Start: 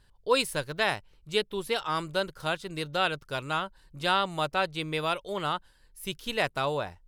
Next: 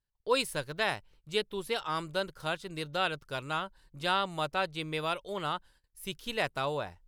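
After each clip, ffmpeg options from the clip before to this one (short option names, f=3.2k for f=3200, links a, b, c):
-af "agate=range=-23dB:threshold=-55dB:ratio=16:detection=peak,volume=-3.5dB"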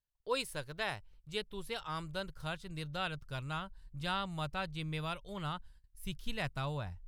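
-af "asubboost=boost=8:cutoff=140,volume=-6.5dB"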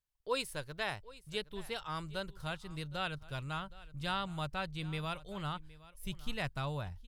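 -af "aecho=1:1:767:0.106"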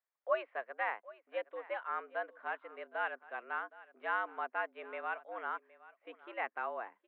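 -af "highpass=f=320:t=q:w=0.5412,highpass=f=320:t=q:w=1.307,lowpass=f=2.1k:t=q:w=0.5176,lowpass=f=2.1k:t=q:w=0.7071,lowpass=f=2.1k:t=q:w=1.932,afreqshift=110,volume=3dB"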